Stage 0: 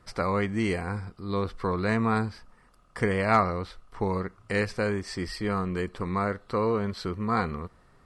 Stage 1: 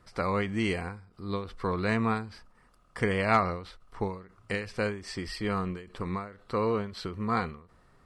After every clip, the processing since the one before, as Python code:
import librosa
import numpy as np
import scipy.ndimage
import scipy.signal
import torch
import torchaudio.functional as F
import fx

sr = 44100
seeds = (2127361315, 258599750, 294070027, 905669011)

y = fx.dynamic_eq(x, sr, hz=2900.0, q=2.1, threshold_db=-50.0, ratio=4.0, max_db=6)
y = fx.end_taper(y, sr, db_per_s=110.0)
y = y * 10.0 ** (-2.0 / 20.0)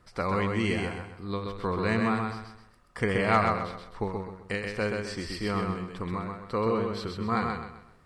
y = fx.echo_feedback(x, sr, ms=129, feedback_pct=35, wet_db=-4)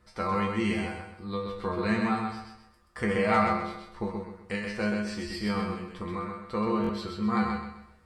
y = fx.comb_fb(x, sr, f0_hz=70.0, decay_s=0.31, harmonics='odd', damping=0.0, mix_pct=90)
y = fx.buffer_glitch(y, sr, at_s=(6.82,), block=1024, repeats=2)
y = y * 10.0 ** (9.0 / 20.0)